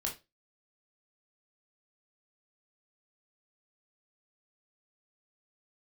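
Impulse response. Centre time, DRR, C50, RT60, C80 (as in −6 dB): 20 ms, −1.5 dB, 10.5 dB, 0.25 s, 18.5 dB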